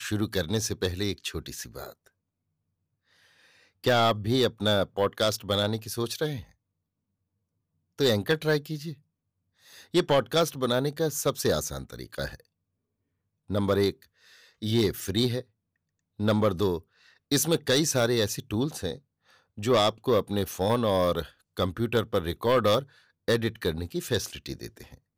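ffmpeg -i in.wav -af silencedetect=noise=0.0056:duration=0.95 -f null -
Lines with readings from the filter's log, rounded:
silence_start: 2.07
silence_end: 3.84 | silence_duration: 1.77
silence_start: 6.43
silence_end: 7.99 | silence_duration: 1.55
silence_start: 12.40
silence_end: 13.50 | silence_duration: 1.10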